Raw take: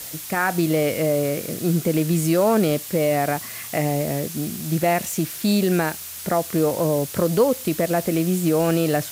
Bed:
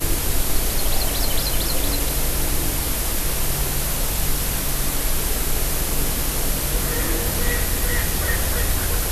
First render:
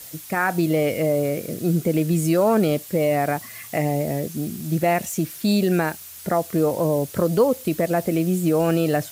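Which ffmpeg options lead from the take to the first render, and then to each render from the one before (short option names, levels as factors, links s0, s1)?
-af "afftdn=nr=7:nf=-35"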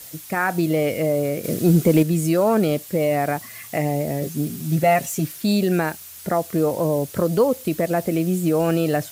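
-filter_complex "[0:a]asettb=1/sr,asplit=3[s0][s1][s2];[s0]atrim=end=1.444[s3];[s1]atrim=start=1.44:end=2.03,asetpts=PTS-STARTPTS,afade=t=in:d=0.004:c=qsin,afade=t=out:st=0.586:d=0.004:c=qsin,acontrast=42[s4];[s2]atrim=start=2.026[s5];[s3][s4]acrossfade=d=0.004:c1=hsin:c2=qsin[s6];[s6][s5]acrossfade=d=0.004:c1=qsin:c2=hsin,asettb=1/sr,asplit=3[s7][s8][s9];[s7]atrim=end=4.214[s10];[s8]atrim=start=4.21:end=5.32,asetpts=PTS-STARTPTS,afade=t=in:d=0.004:c=qsin,afade=t=out:st=1.106:d=0.004:c=qsin,aecho=1:1:7.3:0.65,atrim=end_sample=48951[s11];[s9]atrim=start=5.316[s12];[s10][s11]acrossfade=d=0.004:c1=hsin:c2=qsin[s13];[s13][s12]acrossfade=d=0.004:c1=qsin:c2=hsin"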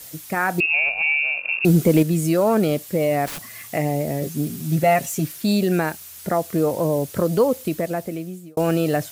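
-filter_complex "[0:a]asettb=1/sr,asplit=3[s0][s1][s2];[s0]atrim=end=0.604[s3];[s1]atrim=start=0.6:end=1.65,asetpts=PTS-STARTPTS,afade=t=in:d=0.004:c=qsin,afade=t=out:st=1.046:d=0.004:c=qsin,lowpass=f=2500:t=q:w=0.5098,lowpass=f=2500:t=q:w=0.6013,lowpass=f=2500:t=q:w=0.9,lowpass=f=2500:t=q:w=2.563,afreqshift=-2900[s4];[s2]atrim=start=1.646[s5];[s3][s4]acrossfade=d=0.004:c1=hsin:c2=qsin[s6];[s6][s5]acrossfade=d=0.004:c1=qsin:c2=hsin,asettb=1/sr,asplit=3[s7][s8][s9];[s7]atrim=end=3.264[s10];[s8]atrim=start=3.26:end=3.69,asetpts=PTS-STARTPTS,afade=t=in:d=0.004:c=qsin,afade=t=out:st=0.426:d=0.004:c=qsin,aeval=exprs='(mod(22.4*val(0)+1,2)-1)/22.4':c=same[s11];[s9]atrim=start=3.686[s12];[s10][s11]acrossfade=d=0.004:c1=hsin:c2=qsin[s13];[s13][s12]acrossfade=d=0.004:c1=qsin:c2=hsin,asplit=2[s14][s15];[s14]atrim=end=8.57,asetpts=PTS-STARTPTS,afade=t=out:st=7.57:d=1[s16];[s15]atrim=start=8.57,asetpts=PTS-STARTPTS,afade=t=in:d=0.004:c=hsin[s17];[s16][s17]concat=n=2:v=0:a=1"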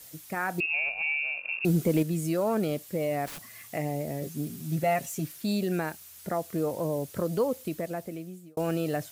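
-af "volume=0.355"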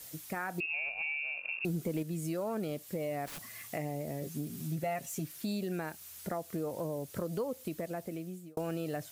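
-af "acompressor=threshold=0.0158:ratio=2.5"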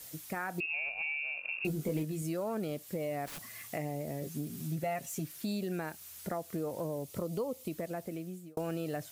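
-filter_complex "[0:a]asettb=1/sr,asplit=3[s0][s1][s2];[s0]atrim=end=1.564[s3];[s1]atrim=start=1.56:end=2.22,asetpts=PTS-STARTPTS,afade=t=in:d=0.004:c=qsin,afade=t=out:st=0.656:d=0.004:c=qsin,asplit=2[s4][s5];[s5]adelay=20,volume=0.562[s6];[s4][s6]amix=inputs=2:normalize=0,atrim=end_sample=29106[s7];[s2]atrim=start=2.216[s8];[s3][s7]acrossfade=d=0.004:c1=hsin:c2=qsin[s9];[s9][s8]acrossfade=d=0.004:c1=qsin:c2=hsin,asettb=1/sr,asplit=3[s10][s11][s12];[s10]atrim=end=7.034[s13];[s11]atrim=start=7.03:end=7.72,asetpts=PTS-STARTPTS,afade=t=in:d=0.004:c=qsin,afade=t=out:st=0.686:d=0.004:c=qsin,equalizer=f=1600:t=o:w=0.25:g=-14.5[s14];[s12]atrim=start=7.716[s15];[s13][s14]acrossfade=d=0.004:c1=hsin:c2=qsin[s16];[s16][s15]acrossfade=d=0.004:c1=qsin:c2=hsin"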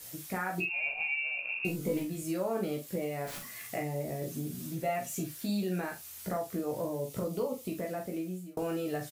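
-filter_complex "[0:a]asplit=2[s0][s1];[s1]adelay=40,volume=0.355[s2];[s0][s2]amix=inputs=2:normalize=0,aecho=1:1:16|49:0.668|0.398"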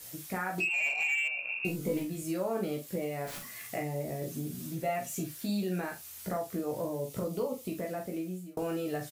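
-filter_complex "[0:a]asettb=1/sr,asplit=3[s0][s1][s2];[s0]atrim=end=0.584[s3];[s1]atrim=start=0.58:end=1.28,asetpts=PTS-STARTPTS,afade=t=in:d=0.004:c=qsin,afade=t=out:st=0.696:d=0.004:c=qsin,asplit=2[s4][s5];[s5]highpass=f=720:p=1,volume=3.98,asoftclip=type=tanh:threshold=0.0708[s6];[s4][s6]amix=inputs=2:normalize=0,lowpass=f=5800:p=1,volume=0.501[s7];[s2]atrim=start=1.276[s8];[s3][s7]acrossfade=d=0.004:c1=hsin:c2=qsin[s9];[s9][s8]acrossfade=d=0.004:c1=qsin:c2=hsin"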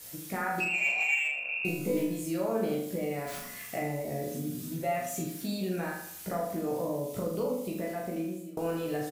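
-filter_complex "[0:a]asplit=2[s0][s1];[s1]adelay=36,volume=0.473[s2];[s0][s2]amix=inputs=2:normalize=0,asplit=2[s3][s4];[s4]adelay=80,lowpass=f=3000:p=1,volume=0.531,asplit=2[s5][s6];[s6]adelay=80,lowpass=f=3000:p=1,volume=0.48,asplit=2[s7][s8];[s8]adelay=80,lowpass=f=3000:p=1,volume=0.48,asplit=2[s9][s10];[s10]adelay=80,lowpass=f=3000:p=1,volume=0.48,asplit=2[s11][s12];[s12]adelay=80,lowpass=f=3000:p=1,volume=0.48,asplit=2[s13][s14];[s14]adelay=80,lowpass=f=3000:p=1,volume=0.48[s15];[s3][s5][s7][s9][s11][s13][s15]amix=inputs=7:normalize=0"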